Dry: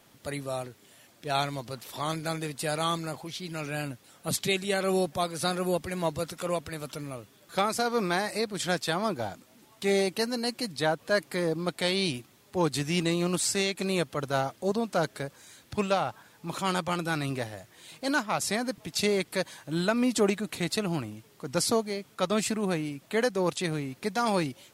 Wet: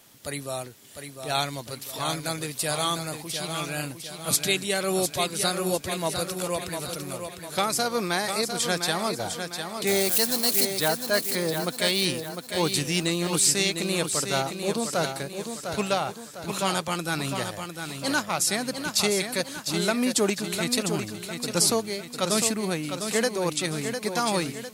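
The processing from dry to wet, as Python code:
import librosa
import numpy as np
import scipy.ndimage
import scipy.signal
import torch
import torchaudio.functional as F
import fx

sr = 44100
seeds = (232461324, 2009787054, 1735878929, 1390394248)

y = fx.crossing_spikes(x, sr, level_db=-24.0, at=(9.87, 10.65))
y = fx.high_shelf(y, sr, hz=3500.0, db=9.5)
y = fx.echo_feedback(y, sr, ms=703, feedback_pct=45, wet_db=-7)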